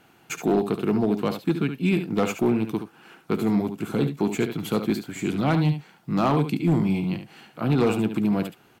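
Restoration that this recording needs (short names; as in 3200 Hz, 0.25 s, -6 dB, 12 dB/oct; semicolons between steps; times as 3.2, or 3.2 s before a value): clip repair -14.5 dBFS; inverse comb 72 ms -9 dB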